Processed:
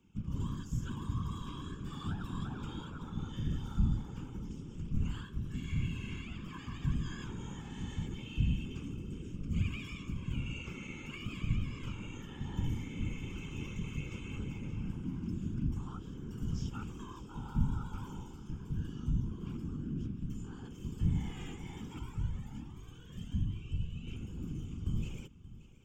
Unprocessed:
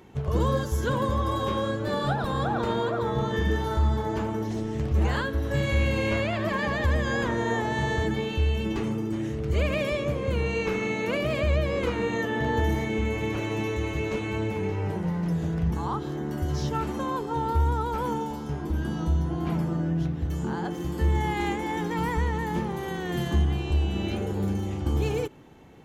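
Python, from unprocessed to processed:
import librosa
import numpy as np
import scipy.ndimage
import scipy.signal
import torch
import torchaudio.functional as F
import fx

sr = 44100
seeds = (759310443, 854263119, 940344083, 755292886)

y = fx.tone_stack(x, sr, knobs='6-0-2')
y = fx.notch(y, sr, hz=6000.0, q=10.0)
y = fx.rider(y, sr, range_db=4, speed_s=2.0)
y = fx.fixed_phaser(y, sr, hz=2800.0, stages=8)
y = fx.whisperise(y, sr, seeds[0])
y = y + 10.0 ** (-17.0 / 20.0) * np.pad(y, (int(578 * sr / 1000.0), 0))[:len(y)]
y = fx.comb_cascade(y, sr, direction='rising', hz=1.3, at=(21.99, 24.07))
y = F.gain(torch.from_numpy(y), 5.0).numpy()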